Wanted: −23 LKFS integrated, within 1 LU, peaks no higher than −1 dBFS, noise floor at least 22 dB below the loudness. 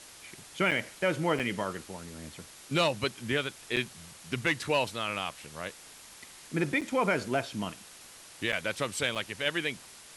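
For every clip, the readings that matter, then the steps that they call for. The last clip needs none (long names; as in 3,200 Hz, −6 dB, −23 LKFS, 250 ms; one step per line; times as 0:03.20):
number of dropouts 6; longest dropout 6.8 ms; background noise floor −51 dBFS; target noise floor −53 dBFS; integrated loudness −31.0 LKFS; sample peak −15.5 dBFS; target loudness −23.0 LKFS
→ repair the gap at 0:00.71/0:01.39/0:03.76/0:06.81/0:08.52/0:09.15, 6.8 ms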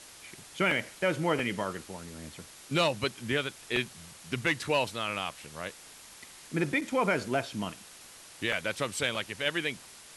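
number of dropouts 0; background noise floor −51 dBFS; target noise floor −53 dBFS
→ broadband denoise 6 dB, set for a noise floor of −51 dBFS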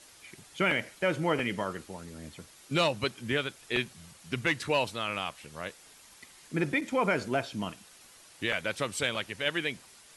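background noise floor −55 dBFS; integrated loudness −31.0 LKFS; sample peak −15.5 dBFS; target loudness −23.0 LKFS
→ level +8 dB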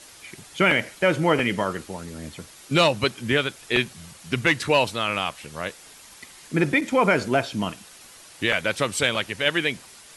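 integrated loudness −23.0 LKFS; sample peak −7.5 dBFS; background noise floor −47 dBFS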